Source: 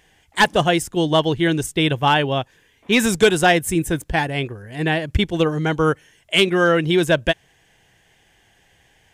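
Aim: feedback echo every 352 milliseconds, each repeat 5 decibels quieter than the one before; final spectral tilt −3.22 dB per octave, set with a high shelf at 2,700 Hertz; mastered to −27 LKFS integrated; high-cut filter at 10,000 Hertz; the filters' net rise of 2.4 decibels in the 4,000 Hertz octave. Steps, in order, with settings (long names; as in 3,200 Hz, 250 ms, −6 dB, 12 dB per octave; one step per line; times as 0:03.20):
low-pass filter 10,000 Hz
high-shelf EQ 2,700 Hz −7 dB
parametric band 4,000 Hz +9 dB
repeating echo 352 ms, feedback 56%, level −5 dB
level −9.5 dB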